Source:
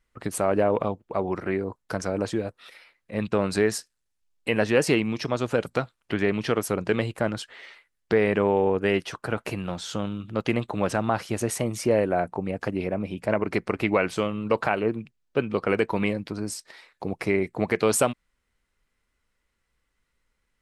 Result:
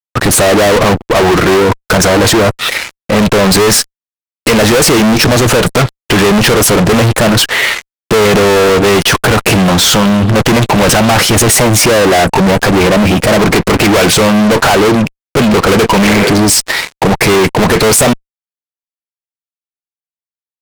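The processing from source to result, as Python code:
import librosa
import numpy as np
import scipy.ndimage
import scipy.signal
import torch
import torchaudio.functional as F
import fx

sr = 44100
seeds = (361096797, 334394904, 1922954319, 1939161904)

y = fx.spec_repair(x, sr, seeds[0], start_s=16.07, length_s=0.39, low_hz=360.0, high_hz=2600.0, source='both')
y = fx.fuzz(y, sr, gain_db=45.0, gate_db=-54.0)
y = y * librosa.db_to_amplitude(6.5)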